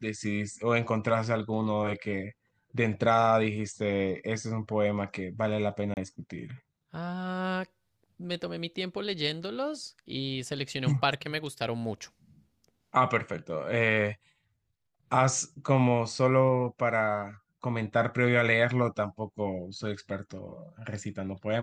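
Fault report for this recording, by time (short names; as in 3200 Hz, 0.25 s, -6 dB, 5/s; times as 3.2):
5.94–5.97 gap 29 ms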